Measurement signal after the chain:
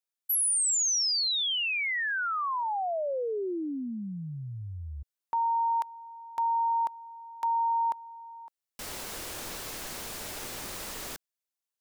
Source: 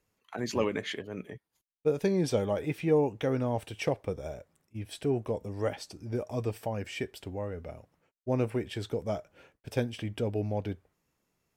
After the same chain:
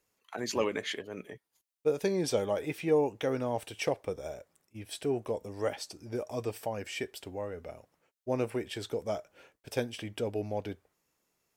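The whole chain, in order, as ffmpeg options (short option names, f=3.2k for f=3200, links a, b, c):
-af "bass=f=250:g=-8,treble=f=4k:g=4"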